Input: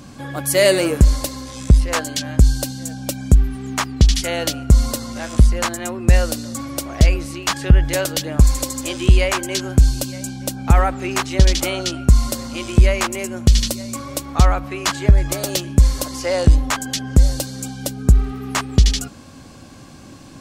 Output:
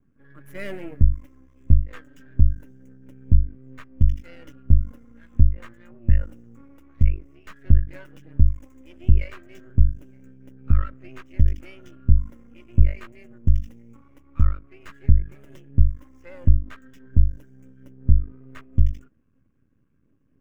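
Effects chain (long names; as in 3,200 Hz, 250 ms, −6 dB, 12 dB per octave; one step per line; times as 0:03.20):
running median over 5 samples
phaser with its sweep stopped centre 1,800 Hz, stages 4
half-wave rectification
every bin expanded away from the loudest bin 1.5 to 1
level +1 dB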